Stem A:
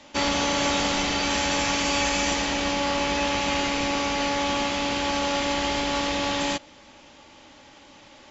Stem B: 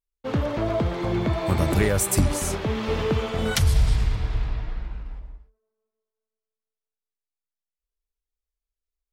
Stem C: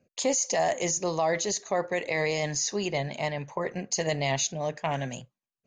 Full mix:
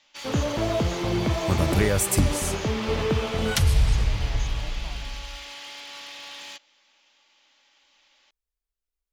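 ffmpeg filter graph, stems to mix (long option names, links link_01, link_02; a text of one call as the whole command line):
ffmpeg -i stem1.wav -i stem2.wav -i stem3.wav -filter_complex "[0:a]lowpass=3900,aderivative,asoftclip=type=hard:threshold=-35.5dB,volume=0dB[link_01];[1:a]volume=-0.5dB[link_02];[2:a]volume=-17dB[link_03];[link_01][link_02][link_03]amix=inputs=3:normalize=0" out.wav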